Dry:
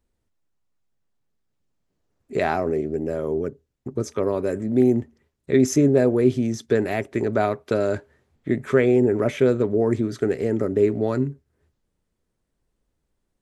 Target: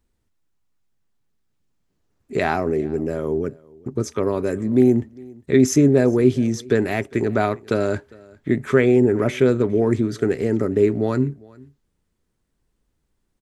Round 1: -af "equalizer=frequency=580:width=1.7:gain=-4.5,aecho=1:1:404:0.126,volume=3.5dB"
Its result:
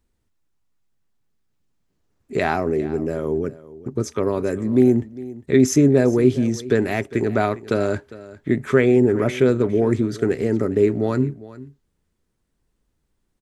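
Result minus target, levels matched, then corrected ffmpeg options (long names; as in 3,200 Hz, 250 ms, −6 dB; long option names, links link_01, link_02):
echo-to-direct +6.5 dB
-af "equalizer=frequency=580:width=1.7:gain=-4.5,aecho=1:1:404:0.0596,volume=3.5dB"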